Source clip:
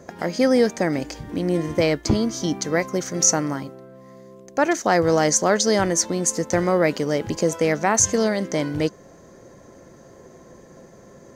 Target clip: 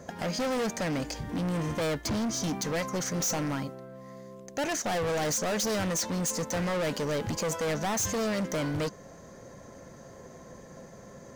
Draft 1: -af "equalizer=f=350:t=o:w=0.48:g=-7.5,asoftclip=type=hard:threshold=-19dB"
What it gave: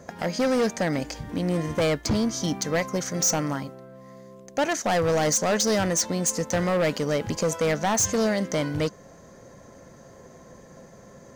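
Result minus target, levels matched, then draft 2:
hard clip: distortion -5 dB
-af "equalizer=f=350:t=o:w=0.48:g=-7.5,asoftclip=type=hard:threshold=-27.5dB"

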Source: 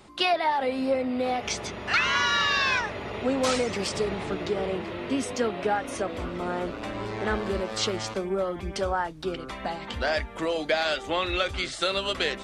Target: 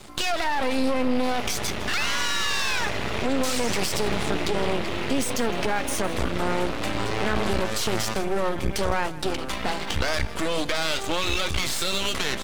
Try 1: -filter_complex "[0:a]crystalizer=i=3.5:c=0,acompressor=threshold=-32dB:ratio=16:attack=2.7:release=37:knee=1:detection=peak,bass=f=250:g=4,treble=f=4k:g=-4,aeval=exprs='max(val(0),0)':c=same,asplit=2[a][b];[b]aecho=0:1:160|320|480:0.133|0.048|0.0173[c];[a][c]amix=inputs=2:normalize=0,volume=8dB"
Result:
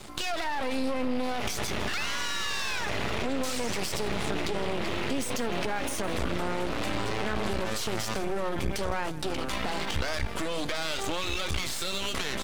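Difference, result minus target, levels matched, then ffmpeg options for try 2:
compressor: peak gain reduction +6 dB
-filter_complex "[0:a]crystalizer=i=3.5:c=0,acompressor=threshold=-25.5dB:ratio=16:attack=2.7:release=37:knee=1:detection=peak,bass=f=250:g=4,treble=f=4k:g=-4,aeval=exprs='max(val(0),0)':c=same,asplit=2[a][b];[b]aecho=0:1:160|320|480:0.133|0.048|0.0173[c];[a][c]amix=inputs=2:normalize=0,volume=8dB"

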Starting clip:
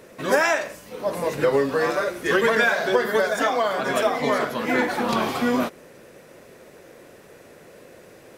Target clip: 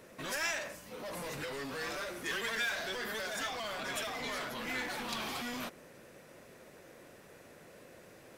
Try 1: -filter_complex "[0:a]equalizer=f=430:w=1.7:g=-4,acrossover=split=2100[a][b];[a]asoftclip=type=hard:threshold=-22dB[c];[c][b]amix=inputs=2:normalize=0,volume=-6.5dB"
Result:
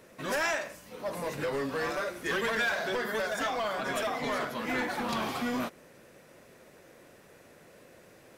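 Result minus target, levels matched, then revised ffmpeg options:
hard clip: distortion -7 dB
-filter_complex "[0:a]equalizer=f=430:w=1.7:g=-4,acrossover=split=2100[a][b];[a]asoftclip=type=hard:threshold=-34dB[c];[c][b]amix=inputs=2:normalize=0,volume=-6.5dB"

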